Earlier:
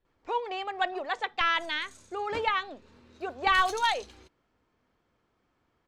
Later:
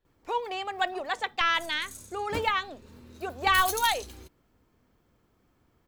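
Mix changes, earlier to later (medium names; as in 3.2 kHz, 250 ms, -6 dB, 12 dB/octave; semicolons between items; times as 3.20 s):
background: add bass shelf 380 Hz +10 dB; master: remove distance through air 100 m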